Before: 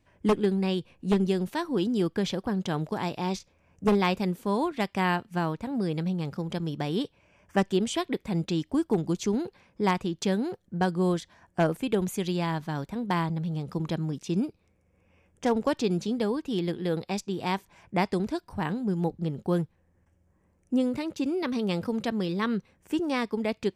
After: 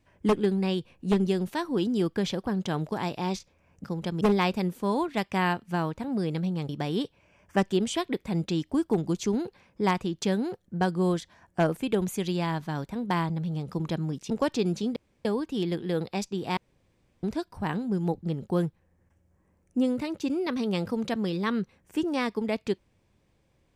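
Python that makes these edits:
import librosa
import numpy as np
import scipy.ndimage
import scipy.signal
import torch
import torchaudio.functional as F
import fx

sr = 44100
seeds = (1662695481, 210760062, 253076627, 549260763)

y = fx.edit(x, sr, fx.move(start_s=6.32, length_s=0.37, to_s=3.84),
    fx.cut(start_s=14.3, length_s=1.25),
    fx.insert_room_tone(at_s=16.21, length_s=0.29),
    fx.room_tone_fill(start_s=17.53, length_s=0.66), tone=tone)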